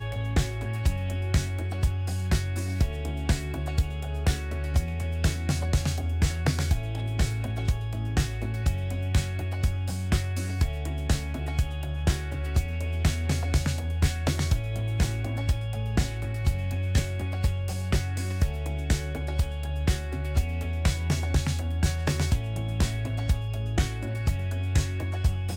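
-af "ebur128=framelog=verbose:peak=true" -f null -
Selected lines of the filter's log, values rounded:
Integrated loudness:
  I:         -28.5 LUFS
  Threshold: -38.5 LUFS
Loudness range:
  LRA:         1.3 LU
  Threshold: -48.5 LUFS
  LRA low:   -29.0 LUFS
  LRA high:  -27.8 LUFS
True peak:
  Peak:      -10.8 dBFS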